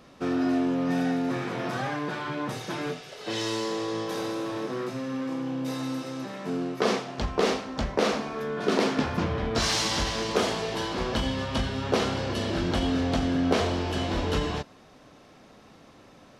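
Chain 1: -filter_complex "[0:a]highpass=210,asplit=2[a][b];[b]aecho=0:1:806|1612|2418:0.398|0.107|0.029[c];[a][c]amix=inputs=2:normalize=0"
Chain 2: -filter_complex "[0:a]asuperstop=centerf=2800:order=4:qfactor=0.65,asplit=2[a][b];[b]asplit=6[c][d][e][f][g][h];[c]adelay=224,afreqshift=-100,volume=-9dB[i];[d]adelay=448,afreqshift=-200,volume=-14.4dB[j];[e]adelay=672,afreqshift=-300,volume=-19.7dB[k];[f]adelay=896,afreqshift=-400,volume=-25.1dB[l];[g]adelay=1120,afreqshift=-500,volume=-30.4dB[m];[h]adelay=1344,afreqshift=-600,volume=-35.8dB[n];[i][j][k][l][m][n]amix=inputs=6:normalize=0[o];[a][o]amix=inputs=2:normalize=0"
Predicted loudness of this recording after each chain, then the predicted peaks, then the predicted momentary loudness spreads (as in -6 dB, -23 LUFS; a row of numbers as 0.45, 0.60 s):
-29.0, -29.0 LUFS; -9.0, -10.5 dBFS; 9, 8 LU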